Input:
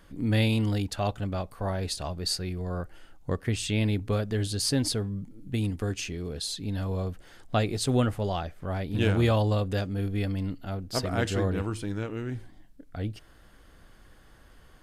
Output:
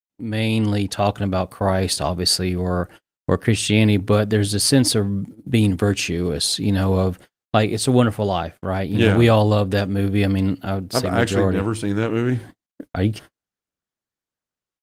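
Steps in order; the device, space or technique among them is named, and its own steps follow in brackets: video call (HPF 110 Hz 12 dB/oct; AGC gain up to 16 dB; gate -34 dBFS, range -49 dB; gain -1 dB; Opus 32 kbps 48000 Hz)

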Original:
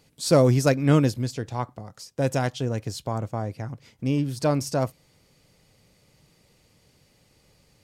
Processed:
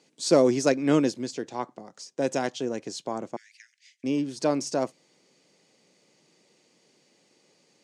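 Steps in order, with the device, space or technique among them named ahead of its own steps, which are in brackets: 3.36–4.04 steep high-pass 1700 Hz 72 dB/oct; television speaker (speaker cabinet 200–8600 Hz, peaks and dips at 360 Hz +5 dB, 1300 Hz -3 dB, 6400 Hz +4 dB); gain -1.5 dB

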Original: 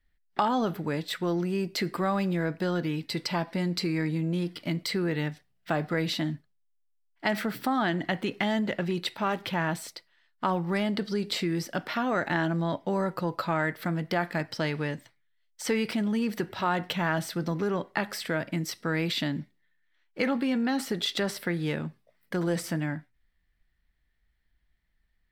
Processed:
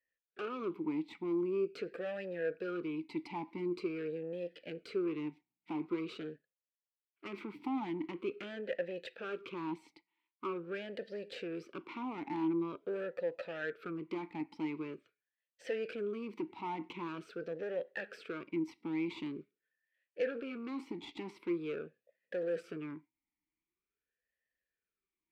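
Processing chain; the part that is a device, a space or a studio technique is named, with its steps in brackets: talk box (tube stage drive 27 dB, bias 0.75; vowel sweep e-u 0.45 Hz); gain +6 dB

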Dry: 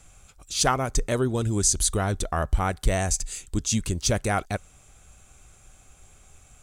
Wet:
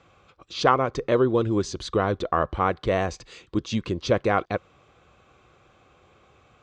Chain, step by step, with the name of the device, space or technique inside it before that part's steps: guitar cabinet (speaker cabinet 110–4100 Hz, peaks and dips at 340 Hz +7 dB, 500 Hz +9 dB, 1100 Hz +9 dB)

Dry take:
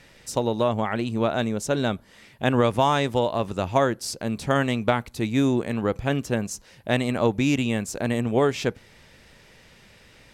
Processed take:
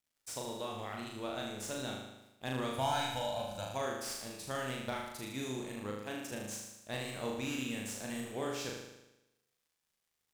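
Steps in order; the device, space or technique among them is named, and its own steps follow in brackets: pre-emphasis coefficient 0.8; early transistor amplifier (crossover distortion -54.5 dBFS; slew limiter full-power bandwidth 110 Hz); 2.78–3.65 comb 1.3 ms, depth 92%; 5.9–6.32 HPF 180 Hz 24 dB/oct; flutter echo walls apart 6.6 m, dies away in 0.94 s; gain -5.5 dB

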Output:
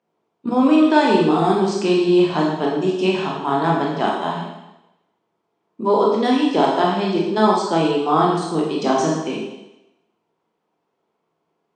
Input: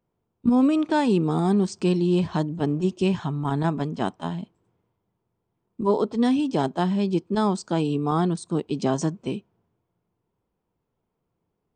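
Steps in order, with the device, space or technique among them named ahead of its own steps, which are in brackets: supermarket ceiling speaker (BPF 350–5500 Hz; reverb RT60 0.90 s, pre-delay 18 ms, DRR -3 dB); gain +5.5 dB

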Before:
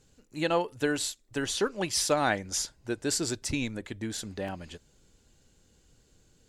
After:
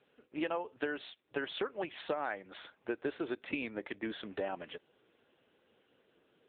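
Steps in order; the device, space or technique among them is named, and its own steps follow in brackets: 3.55–4.13 HPF 90 Hz 12 dB/oct; voicemail (BPF 380–3100 Hz; compressor 8:1, threshold -37 dBFS, peak gain reduction 15.5 dB; gain +5.5 dB; AMR-NB 6.7 kbps 8000 Hz)

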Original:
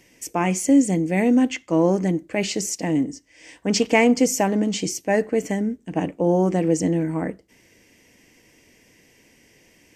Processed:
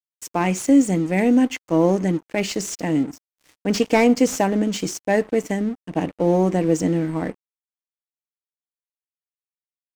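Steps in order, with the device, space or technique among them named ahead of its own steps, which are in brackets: early transistor amplifier (crossover distortion -40.5 dBFS; slew limiter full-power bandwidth 260 Hz); gain +1.5 dB

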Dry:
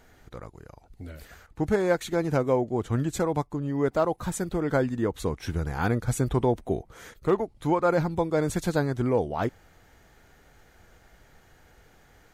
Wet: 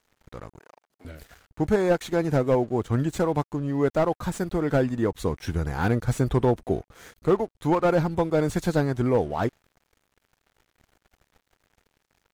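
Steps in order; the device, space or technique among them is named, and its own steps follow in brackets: early transistor amplifier (crossover distortion -51.5 dBFS; slew limiter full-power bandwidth 76 Hz); 0.59–1.05 HPF 540 Hz 12 dB/oct; gain +2.5 dB

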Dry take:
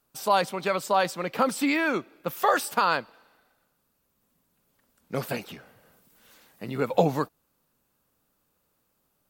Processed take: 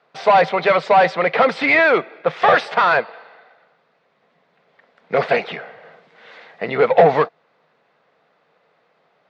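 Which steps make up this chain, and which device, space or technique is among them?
overdrive pedal into a guitar cabinet (overdrive pedal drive 23 dB, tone 7500 Hz, clips at -7 dBFS; speaker cabinet 110–3700 Hz, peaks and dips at 160 Hz +7 dB, 280 Hz -5 dB, 460 Hz +8 dB, 690 Hz +9 dB, 2000 Hz +7 dB, 2900 Hz -4 dB); gain -1.5 dB

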